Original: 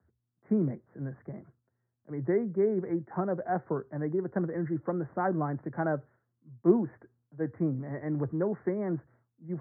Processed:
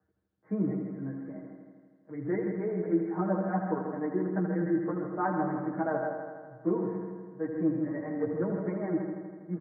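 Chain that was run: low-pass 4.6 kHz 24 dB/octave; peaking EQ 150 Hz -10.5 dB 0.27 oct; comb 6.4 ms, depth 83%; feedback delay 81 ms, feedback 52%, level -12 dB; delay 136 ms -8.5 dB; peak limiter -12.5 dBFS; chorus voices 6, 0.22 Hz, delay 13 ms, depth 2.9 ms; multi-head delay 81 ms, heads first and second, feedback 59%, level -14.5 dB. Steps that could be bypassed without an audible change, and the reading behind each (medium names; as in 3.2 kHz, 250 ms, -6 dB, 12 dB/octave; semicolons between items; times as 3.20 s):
low-pass 4.6 kHz: input has nothing above 1.7 kHz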